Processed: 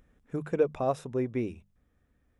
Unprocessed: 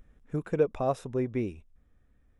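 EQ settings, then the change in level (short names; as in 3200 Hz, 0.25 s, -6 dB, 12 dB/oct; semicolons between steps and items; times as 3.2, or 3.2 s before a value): HPF 70 Hz 6 dB/oct; notches 50/100/150/200 Hz; 0.0 dB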